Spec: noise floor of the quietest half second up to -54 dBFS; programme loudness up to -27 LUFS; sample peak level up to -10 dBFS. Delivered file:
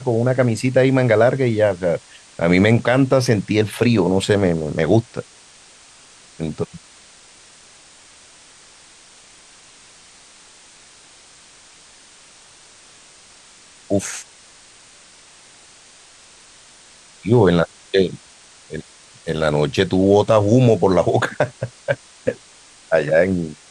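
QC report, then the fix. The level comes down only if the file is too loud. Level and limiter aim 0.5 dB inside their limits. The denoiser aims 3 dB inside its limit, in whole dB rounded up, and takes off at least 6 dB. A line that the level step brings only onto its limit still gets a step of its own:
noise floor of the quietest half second -47 dBFS: fail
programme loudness -18.0 LUFS: fail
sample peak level -3.0 dBFS: fail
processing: gain -9.5 dB

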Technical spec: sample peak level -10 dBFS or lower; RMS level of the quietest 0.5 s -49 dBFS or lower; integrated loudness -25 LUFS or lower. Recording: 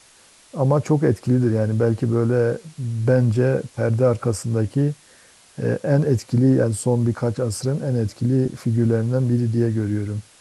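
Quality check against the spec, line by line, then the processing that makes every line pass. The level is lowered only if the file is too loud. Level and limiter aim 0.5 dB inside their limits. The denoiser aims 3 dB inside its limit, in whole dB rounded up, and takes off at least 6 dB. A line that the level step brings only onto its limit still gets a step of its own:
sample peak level -6.0 dBFS: fail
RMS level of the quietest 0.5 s -52 dBFS: OK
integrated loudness -21.0 LUFS: fail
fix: gain -4.5 dB

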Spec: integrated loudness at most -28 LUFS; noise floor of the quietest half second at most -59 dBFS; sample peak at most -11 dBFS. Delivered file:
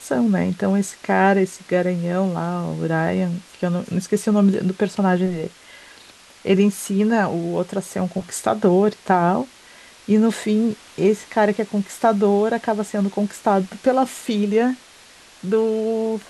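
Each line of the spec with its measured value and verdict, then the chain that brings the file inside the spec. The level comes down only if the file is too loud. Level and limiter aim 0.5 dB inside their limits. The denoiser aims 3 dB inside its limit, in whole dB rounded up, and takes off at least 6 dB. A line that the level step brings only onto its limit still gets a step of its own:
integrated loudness -20.5 LUFS: fail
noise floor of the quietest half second -47 dBFS: fail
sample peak -4.0 dBFS: fail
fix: denoiser 7 dB, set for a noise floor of -47 dBFS; gain -8 dB

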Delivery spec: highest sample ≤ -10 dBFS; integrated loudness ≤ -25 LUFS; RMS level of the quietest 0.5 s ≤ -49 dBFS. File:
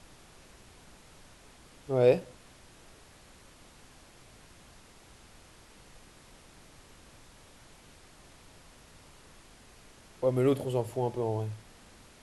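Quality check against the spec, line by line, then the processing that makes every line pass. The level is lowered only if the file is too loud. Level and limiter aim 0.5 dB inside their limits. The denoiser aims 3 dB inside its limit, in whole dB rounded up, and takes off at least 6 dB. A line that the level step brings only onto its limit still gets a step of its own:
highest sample -11.0 dBFS: OK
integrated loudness -29.0 LUFS: OK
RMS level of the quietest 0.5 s -55 dBFS: OK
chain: none

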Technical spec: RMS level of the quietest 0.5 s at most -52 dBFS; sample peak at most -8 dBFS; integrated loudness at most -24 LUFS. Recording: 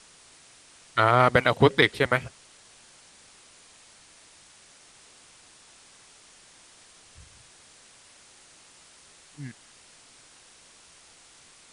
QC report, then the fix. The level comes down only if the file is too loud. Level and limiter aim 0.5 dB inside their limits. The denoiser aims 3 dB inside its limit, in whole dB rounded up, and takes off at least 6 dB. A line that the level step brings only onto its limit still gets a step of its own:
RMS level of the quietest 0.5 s -54 dBFS: OK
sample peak -4.5 dBFS: fail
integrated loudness -21.5 LUFS: fail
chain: gain -3 dB; limiter -8.5 dBFS

